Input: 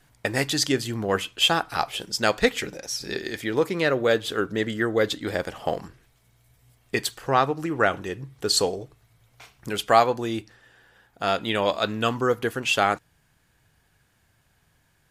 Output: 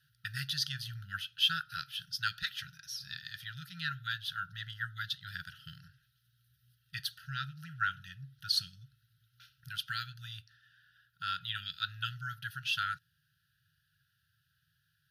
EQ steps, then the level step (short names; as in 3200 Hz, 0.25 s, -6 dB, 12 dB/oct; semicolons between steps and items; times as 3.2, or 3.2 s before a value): HPF 120 Hz 12 dB/oct; brick-wall FIR band-stop 170–1300 Hz; fixed phaser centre 2200 Hz, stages 6; -6.0 dB